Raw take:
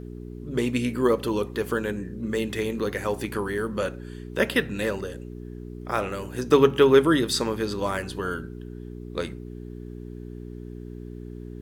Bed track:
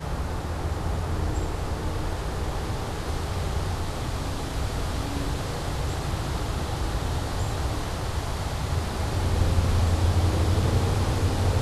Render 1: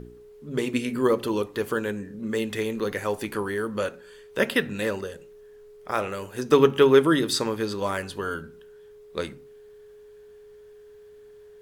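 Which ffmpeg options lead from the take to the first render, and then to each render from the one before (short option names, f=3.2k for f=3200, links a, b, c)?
-af "bandreject=f=60:t=h:w=4,bandreject=f=120:t=h:w=4,bandreject=f=180:t=h:w=4,bandreject=f=240:t=h:w=4,bandreject=f=300:t=h:w=4,bandreject=f=360:t=h:w=4"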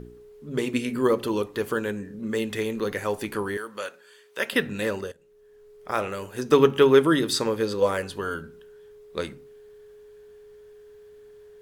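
-filter_complex "[0:a]asettb=1/sr,asplit=3[a][b][c];[a]atrim=end=3.574[d];[b]atrim=start=3.57:end=4.53,asetpts=PTS-STARTPTS,afade=t=in:d=0.004:c=qsin,afade=t=out:st=0.956:d=0.004:c=qsin,highpass=f=1.1k:p=1[e];[c]atrim=start=4.526[f];[d][e]acrossfade=d=0.004:c1=hsin:c2=qsin[g];[g][f]acrossfade=d=0.004:c1=qsin:c2=hsin,asettb=1/sr,asplit=3[h][i][j];[h]atrim=end=7.454[k];[i]atrim=start=7.45:end=8.07,asetpts=PTS-STARTPTS,afade=t=in:d=0.004:c=qsin,afade=t=out:st=0.616:d=0.004:c=qsin,equalizer=f=500:t=o:w=0.22:g=12[l];[j]atrim=start=8.066[m];[k][l]acrossfade=d=0.004:c1=hsin:c2=qsin[n];[n][m]acrossfade=d=0.004:c1=qsin:c2=hsin,asplit=2[o][p];[o]atrim=end=5.12,asetpts=PTS-STARTPTS,afade=t=out:st=5.116:d=0.004:c=hsin:silence=0.125893[q];[p]atrim=start=5.12,asetpts=PTS-STARTPTS,afade=t=in:d=0.78:silence=0.125893[r];[q][r]concat=n=2:v=0:a=1"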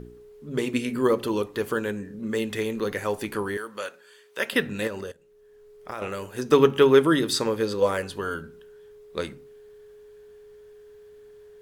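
-filter_complex "[0:a]asettb=1/sr,asplit=3[a][b][c];[a]atrim=end=4.874[d];[b]atrim=start=4.87:end=6.02,asetpts=PTS-STARTPTS,afade=t=in:d=0.004:c=qsin,afade=t=out:st=1.146:d=0.004:c=qsin,acompressor=threshold=-29dB:ratio=6:attack=3.2:release=140:knee=1:detection=peak[e];[c]atrim=start=6.016[f];[d][e]acrossfade=d=0.004:c1=hsin:c2=qsin[g];[g][f]acrossfade=d=0.004:c1=qsin:c2=hsin"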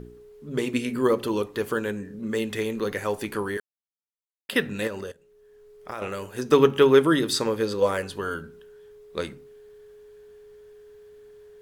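-filter_complex "[0:a]asplit=3[a][b][c];[a]atrim=end=3.6,asetpts=PTS-STARTPTS,afade=t=out:st=3.596:d=0.004:c=hsin[d];[b]atrim=start=3.6:end=4.49,asetpts=PTS-STARTPTS,volume=0[e];[c]atrim=start=4.49,asetpts=PTS-STARTPTS,afade=t=in:d=0.004:c=hsin[f];[d][e][f]concat=n=3:v=0:a=1"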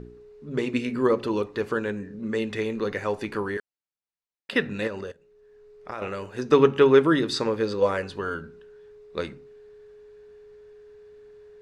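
-af "lowpass=5k,bandreject=f=3.2k:w=10"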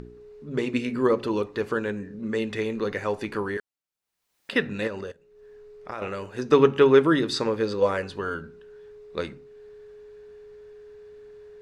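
-af "acompressor=mode=upward:threshold=-42dB:ratio=2.5"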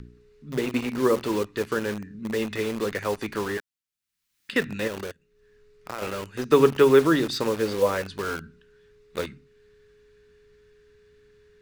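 -filter_complex "[0:a]acrossover=split=320|1200|2100[a][b][c][d];[b]acrusher=bits=5:mix=0:aa=0.000001[e];[d]asoftclip=type=hard:threshold=-26dB[f];[a][e][c][f]amix=inputs=4:normalize=0"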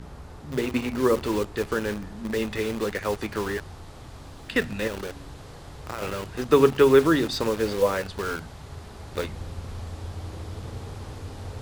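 -filter_complex "[1:a]volume=-13.5dB[a];[0:a][a]amix=inputs=2:normalize=0"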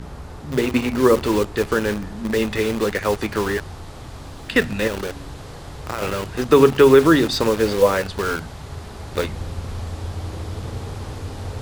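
-af "volume=6.5dB,alimiter=limit=-2dB:level=0:latency=1"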